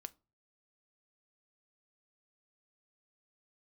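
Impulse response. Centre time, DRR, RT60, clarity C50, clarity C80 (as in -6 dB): 2 ms, 12.0 dB, 0.35 s, 24.5 dB, 31.0 dB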